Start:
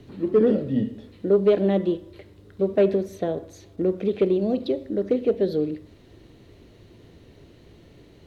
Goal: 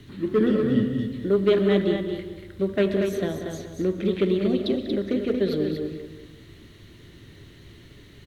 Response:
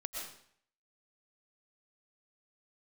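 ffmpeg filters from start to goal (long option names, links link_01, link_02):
-filter_complex "[0:a]firequalizer=gain_entry='entry(140,0);entry(700,-9);entry(1100,0);entry(2000,7);entry(4700,-18)':delay=0.05:min_phase=1,asplit=2[link_01][link_02];[link_02]adelay=189,lowpass=frequency=2000:poles=1,volume=-8dB,asplit=2[link_03][link_04];[link_04]adelay=189,lowpass=frequency=2000:poles=1,volume=0.39,asplit=2[link_05][link_06];[link_06]adelay=189,lowpass=frequency=2000:poles=1,volume=0.39,asplit=2[link_07][link_08];[link_08]adelay=189,lowpass=frequency=2000:poles=1,volume=0.39[link_09];[link_03][link_05][link_07][link_09]amix=inputs=4:normalize=0[link_10];[link_01][link_10]amix=inputs=2:normalize=0,aexciter=amount=10.2:drive=4.8:freq=3600,bandreject=frequency=480:width=12,aecho=1:1:233:0.501,asplit=2[link_11][link_12];[1:a]atrim=start_sample=2205[link_13];[link_12][link_13]afir=irnorm=-1:irlink=0,volume=-10.5dB[link_14];[link_11][link_14]amix=inputs=2:normalize=0"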